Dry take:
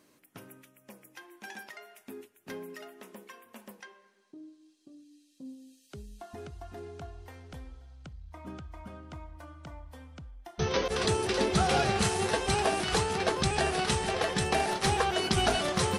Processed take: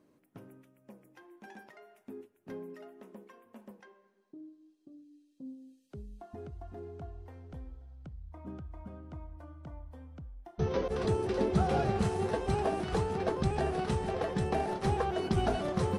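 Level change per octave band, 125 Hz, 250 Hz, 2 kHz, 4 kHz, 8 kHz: +0.5, 0.0, −10.5, −14.5, −16.0 decibels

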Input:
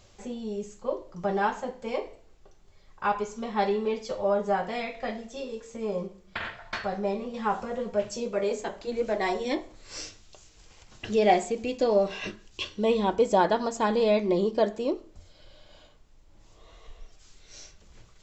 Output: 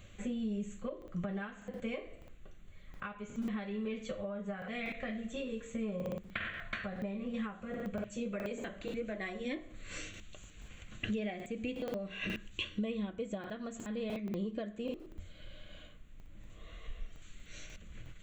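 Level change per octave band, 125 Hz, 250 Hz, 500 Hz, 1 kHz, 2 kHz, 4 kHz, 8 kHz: −4.0, −5.5, −14.5, −20.5, −6.5, −8.0, −10.0 decibels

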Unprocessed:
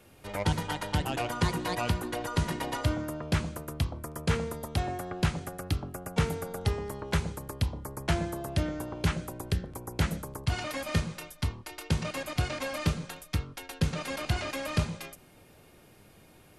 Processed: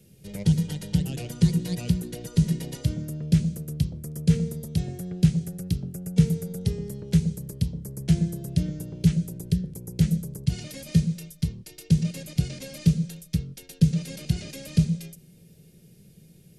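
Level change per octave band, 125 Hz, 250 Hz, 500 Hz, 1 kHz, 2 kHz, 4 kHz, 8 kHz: +8.0 dB, +9.5 dB, −4.0 dB, below −15 dB, −10.0 dB, −2.5 dB, +2.0 dB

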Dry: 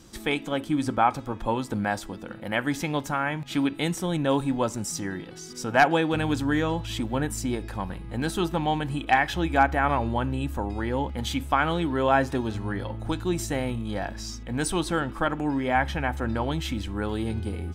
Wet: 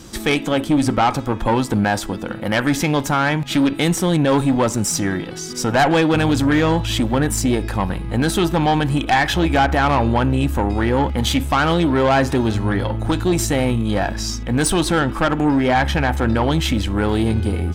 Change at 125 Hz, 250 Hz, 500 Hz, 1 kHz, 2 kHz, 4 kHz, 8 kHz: +10.5, +9.5, +8.5, +6.0, +6.5, +10.0, +11.0 decibels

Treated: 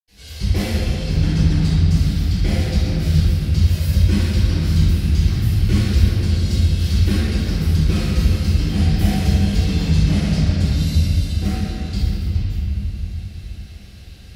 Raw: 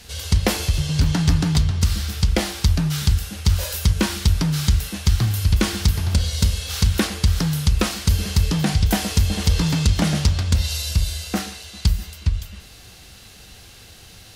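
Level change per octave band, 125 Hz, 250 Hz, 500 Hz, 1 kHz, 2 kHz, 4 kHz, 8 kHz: +3.5, +3.5, 0.0, −4.5, −2.5, −3.5, −8.0 decibels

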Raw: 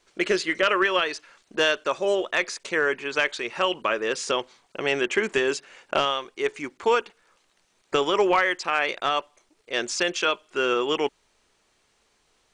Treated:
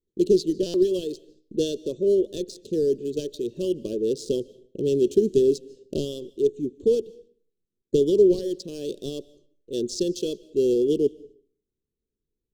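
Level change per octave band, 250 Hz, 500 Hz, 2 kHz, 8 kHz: +7.0 dB, +3.5 dB, below −30 dB, −4.5 dB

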